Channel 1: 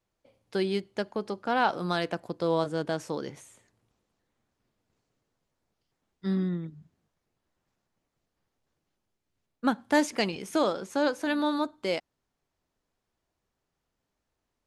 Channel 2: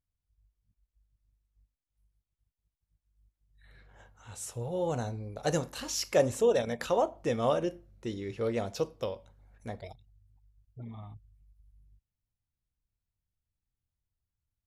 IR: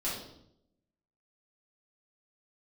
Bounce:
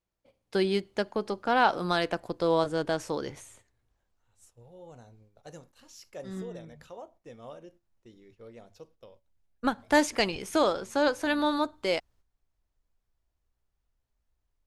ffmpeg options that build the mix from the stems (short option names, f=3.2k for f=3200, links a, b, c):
-filter_complex "[0:a]asubboost=boost=11:cutoff=56,volume=2.5dB[a];[1:a]bandreject=f=50:t=h:w=6,bandreject=f=100:t=h:w=6,aeval=exprs='val(0)+0.000562*(sin(2*PI*60*n/s)+sin(2*PI*2*60*n/s)/2+sin(2*PI*3*60*n/s)/3+sin(2*PI*4*60*n/s)/4+sin(2*PI*5*60*n/s)/5)':c=same,volume=-17.5dB,asplit=2[b][c];[c]apad=whole_len=646734[d];[a][d]sidechaincompress=threshold=-56dB:ratio=3:attack=16:release=240[e];[e][b]amix=inputs=2:normalize=0,agate=range=-9dB:threshold=-57dB:ratio=16:detection=peak"